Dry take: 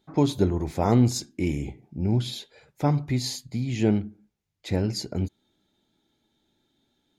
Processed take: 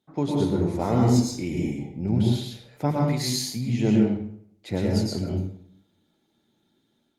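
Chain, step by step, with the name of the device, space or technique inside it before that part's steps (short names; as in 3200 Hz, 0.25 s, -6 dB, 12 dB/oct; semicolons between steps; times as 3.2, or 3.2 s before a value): 2.91–3.56 tilt +2 dB/oct; far-field microphone of a smart speaker (reverb RT60 0.65 s, pre-delay 0.101 s, DRR -1.5 dB; HPF 97 Hz 24 dB/oct; AGC gain up to 5 dB; gain -5.5 dB; Opus 32 kbps 48000 Hz)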